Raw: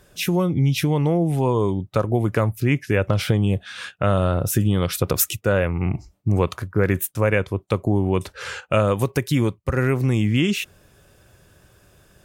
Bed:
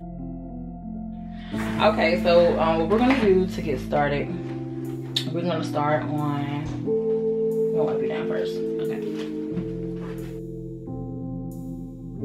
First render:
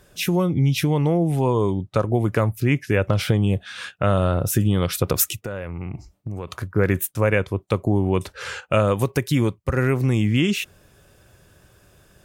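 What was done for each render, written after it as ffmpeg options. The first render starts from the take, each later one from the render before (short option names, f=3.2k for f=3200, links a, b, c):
-filter_complex "[0:a]asettb=1/sr,asplit=3[a][b][c];[a]atrim=end=1.824[d];[b]atrim=start=1.82:end=2.22,asetpts=PTS-STARTPTS,afade=t=in:d=0.004:c=qsin,afade=t=out:st=0.396:d=0.004:c=qsin,lowpass=f=11k:w=0.5412,lowpass=f=11k:w=1.3066[e];[c]atrim=start=2.216[f];[d][e]acrossfade=d=0.004:c1=hsin:c2=qsin[g];[g][f]acrossfade=d=0.004:c1=qsin:c2=hsin,asettb=1/sr,asplit=3[h][i][j];[h]atrim=end=5.324[k];[i]atrim=start=5.32:end=6.53,asetpts=PTS-STARTPTS,afade=t=in:d=0.004:c=qsin,afade=t=out:st=1.206:d=0.004:c=qsin,acompressor=threshold=-26dB:ratio=6:attack=3.2:release=140:knee=1:detection=peak[l];[j]atrim=start=6.526[m];[k][l]acrossfade=d=0.004:c1=hsin:c2=qsin[n];[n][m]acrossfade=d=0.004:c1=qsin:c2=hsin"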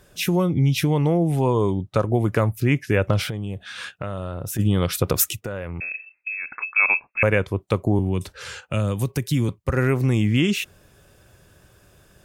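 -filter_complex "[0:a]asplit=3[a][b][c];[a]afade=t=out:st=3.27:d=0.02[d];[b]acompressor=threshold=-28dB:ratio=3:attack=3.2:release=140:knee=1:detection=peak,afade=t=in:st=3.27:d=0.02,afade=t=out:st=4.58:d=0.02[e];[c]afade=t=in:st=4.58:d=0.02[f];[d][e][f]amix=inputs=3:normalize=0,asettb=1/sr,asplit=3[g][h][i];[g]atrim=end=5.804[j];[h]atrim=start=5.8:end=7.23,asetpts=PTS-STARTPTS,afade=t=in:d=0.004:c=qsin,afade=t=out:st=1.426:d=0.004:c=qsin,lowpass=f=2.3k:t=q:w=0.5098,lowpass=f=2.3k:t=q:w=0.6013,lowpass=f=2.3k:t=q:w=0.9,lowpass=f=2.3k:t=q:w=2.563,afreqshift=-2700[k];[i]atrim=start=7.226[l];[j][k]acrossfade=d=0.004:c1=hsin:c2=qsin[m];[m][l]acrossfade=d=0.004:c1=qsin:c2=hsin,asettb=1/sr,asplit=3[n][o][p];[n]atrim=end=7.994[q];[o]atrim=start=7.99:end=9.49,asetpts=PTS-STARTPTS,afade=t=in:d=0.004:c=qsin,afade=t=out:st=1.496:d=0.004:c=qsin,acrossover=split=280|3000[r][s][t];[s]acompressor=threshold=-47dB:ratio=1.5:attack=3.2:release=140:knee=2.83:detection=peak[u];[r][u][t]amix=inputs=3:normalize=0[v];[p]atrim=start=9.486[w];[q][v]acrossfade=d=0.004:c1=hsin:c2=qsin[x];[x][w]acrossfade=d=0.004:c1=qsin:c2=hsin"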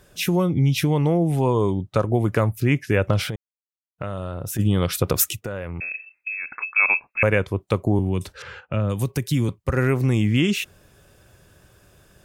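-filter_complex "[0:a]asettb=1/sr,asplit=3[a][b][c];[a]atrim=end=8.424[d];[b]atrim=start=8.42:end=8.9,asetpts=PTS-STARTPTS,afade=t=in:d=0.004:c=qsin,afade=t=out:st=0.476:d=0.004:c=qsin,lowpass=2.2k[e];[c]atrim=start=8.896[f];[d][e]acrossfade=d=0.004:c1=hsin:c2=qsin[g];[g][f]acrossfade=d=0.004:c1=qsin:c2=hsin,asplit=3[h][i][j];[h]atrim=end=3.36,asetpts=PTS-STARTPTS,afade=t=out:st=3.356:d=0.004:c=hsin[k];[i]atrim=start=3.36:end=3.98,asetpts=PTS-STARTPTS,volume=0[l];[j]atrim=start=3.98,asetpts=PTS-STARTPTS,afade=t=in:d=0.004:c=hsin[m];[k][l][m]concat=n=3:v=0:a=1"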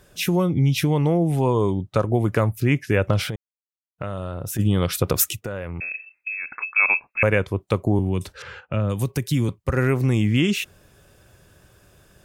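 -af anull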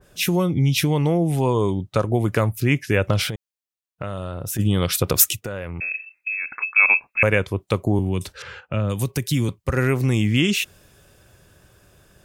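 -af "adynamicequalizer=threshold=0.0126:dfrequency=2100:dqfactor=0.7:tfrequency=2100:tqfactor=0.7:attack=5:release=100:ratio=0.375:range=2.5:mode=boostabove:tftype=highshelf"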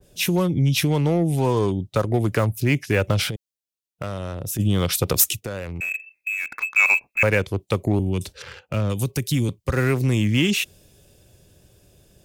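-filter_complex "[0:a]acrossover=split=330|810|2200[a][b][c][d];[c]acrusher=bits=5:mix=0:aa=0.5[e];[a][b][e][d]amix=inputs=4:normalize=0,asoftclip=type=tanh:threshold=-7dB"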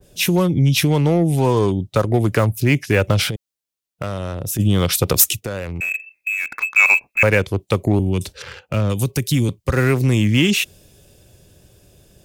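-af "volume=4dB"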